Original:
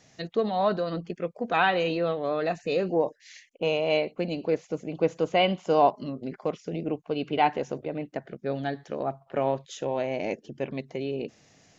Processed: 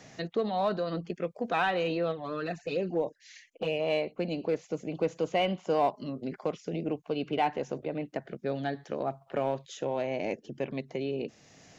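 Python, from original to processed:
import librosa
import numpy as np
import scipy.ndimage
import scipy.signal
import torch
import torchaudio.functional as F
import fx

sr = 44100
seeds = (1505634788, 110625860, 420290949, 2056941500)

p1 = np.clip(10.0 ** (20.0 / 20.0) * x, -1.0, 1.0) / 10.0 ** (20.0 / 20.0)
p2 = x + (p1 * 10.0 ** (-8.0 / 20.0))
p3 = fx.env_flanger(p2, sr, rest_ms=7.3, full_db=-18.0, at=(2.11, 3.79), fade=0.02)
p4 = fx.band_squash(p3, sr, depth_pct=40)
y = p4 * 10.0 ** (-6.0 / 20.0)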